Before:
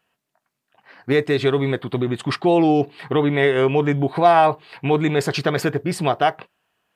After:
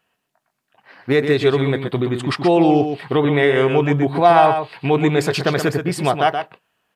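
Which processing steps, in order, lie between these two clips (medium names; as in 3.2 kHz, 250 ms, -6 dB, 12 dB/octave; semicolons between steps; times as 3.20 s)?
delay 124 ms -7.5 dB; trim +1.5 dB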